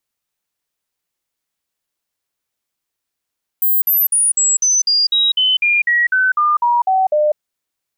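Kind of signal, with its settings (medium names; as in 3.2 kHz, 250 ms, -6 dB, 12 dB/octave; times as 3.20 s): stepped sine 15.3 kHz down, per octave 3, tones 15, 0.20 s, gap 0.05 s -11 dBFS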